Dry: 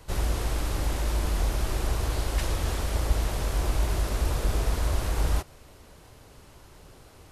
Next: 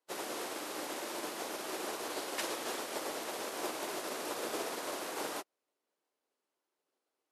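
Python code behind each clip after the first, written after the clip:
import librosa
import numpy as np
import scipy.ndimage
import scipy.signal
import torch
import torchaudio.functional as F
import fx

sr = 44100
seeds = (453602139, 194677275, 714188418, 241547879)

y = scipy.signal.sosfilt(scipy.signal.butter(4, 280.0, 'highpass', fs=sr, output='sos'), x)
y = fx.upward_expand(y, sr, threshold_db=-55.0, expansion=2.5)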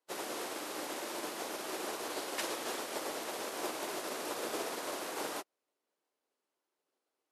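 y = x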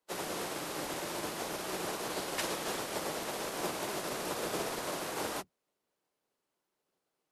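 y = fx.octave_divider(x, sr, octaves=1, level_db=-3.0)
y = F.gain(torch.from_numpy(y), 2.0).numpy()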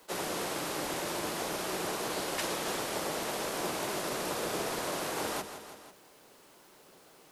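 y = fx.echo_feedback(x, sr, ms=165, feedback_pct=41, wet_db=-19.0)
y = fx.env_flatten(y, sr, amount_pct=50)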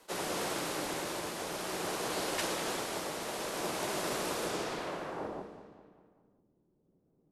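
y = fx.tremolo_shape(x, sr, shape='triangle', hz=0.55, depth_pct=40)
y = fx.filter_sweep_lowpass(y, sr, from_hz=12000.0, to_hz=220.0, start_s=4.43, end_s=5.73, q=0.77)
y = fx.echo_feedback(y, sr, ms=199, feedback_pct=51, wet_db=-12.5)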